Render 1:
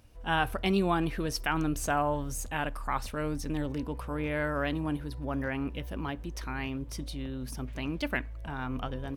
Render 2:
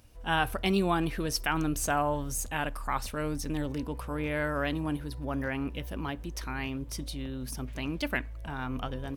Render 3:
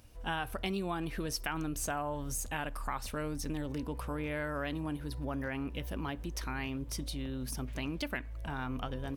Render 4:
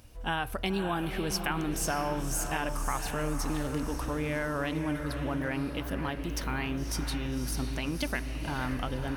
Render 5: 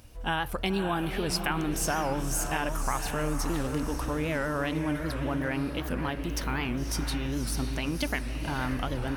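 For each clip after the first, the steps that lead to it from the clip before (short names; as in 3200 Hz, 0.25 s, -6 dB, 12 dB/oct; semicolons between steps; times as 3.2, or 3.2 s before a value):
high shelf 4500 Hz +5.5 dB
compressor 4:1, threshold -33 dBFS, peak gain reduction 10 dB
diffused feedback echo 0.548 s, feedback 49%, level -7 dB; gain +4 dB
record warp 78 rpm, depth 160 cents; gain +2 dB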